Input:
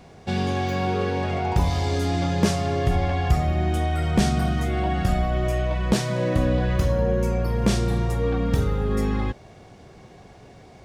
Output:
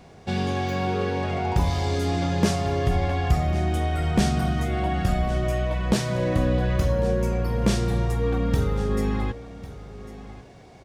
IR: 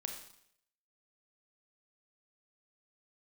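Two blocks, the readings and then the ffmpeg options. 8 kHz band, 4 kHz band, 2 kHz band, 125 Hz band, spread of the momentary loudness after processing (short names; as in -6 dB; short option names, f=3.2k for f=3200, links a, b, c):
-1.0 dB, -1.0 dB, -1.0 dB, -1.0 dB, 9 LU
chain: -filter_complex "[0:a]aecho=1:1:1099:0.15,asplit=2[a][b];[1:a]atrim=start_sample=2205[c];[b][c]afir=irnorm=-1:irlink=0,volume=-15.5dB[d];[a][d]amix=inputs=2:normalize=0,volume=-2dB"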